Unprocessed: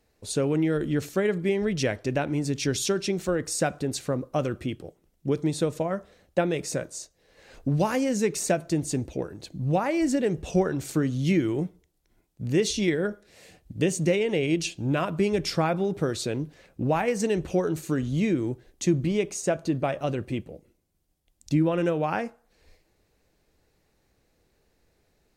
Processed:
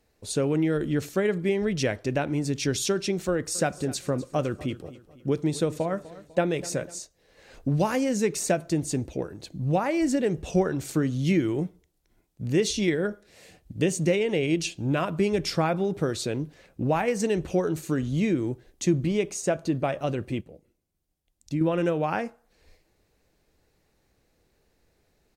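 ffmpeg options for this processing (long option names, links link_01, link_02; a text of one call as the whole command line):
ffmpeg -i in.wav -filter_complex "[0:a]asplit=3[link_01][link_02][link_03];[link_01]afade=type=out:start_time=3.54:duration=0.02[link_04];[link_02]aecho=1:1:249|498|747|996:0.126|0.0554|0.0244|0.0107,afade=type=in:start_time=3.54:duration=0.02,afade=type=out:start_time=6.98:duration=0.02[link_05];[link_03]afade=type=in:start_time=6.98:duration=0.02[link_06];[link_04][link_05][link_06]amix=inputs=3:normalize=0,asplit=3[link_07][link_08][link_09];[link_07]atrim=end=20.412[link_10];[link_08]atrim=start=20.408:end=21.612,asetpts=PTS-STARTPTS,volume=-5.5dB[link_11];[link_09]atrim=start=21.608[link_12];[link_10][link_11]acrossfade=duration=0.004:curve1=hsin:curve2=hsin[link_13];[link_13][link_12]acrossfade=duration=0.004:curve1=hsin:curve2=hsin" out.wav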